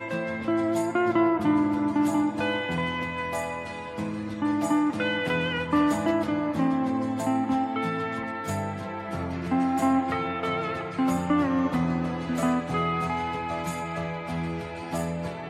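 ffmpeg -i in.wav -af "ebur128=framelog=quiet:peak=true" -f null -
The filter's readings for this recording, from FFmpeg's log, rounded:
Integrated loudness:
  I:         -26.9 LUFS
  Threshold: -36.9 LUFS
Loudness range:
  LRA:         2.7 LU
  Threshold: -46.8 LUFS
  LRA low:   -28.1 LUFS
  LRA high:  -25.5 LUFS
True peak:
  Peak:      -12.0 dBFS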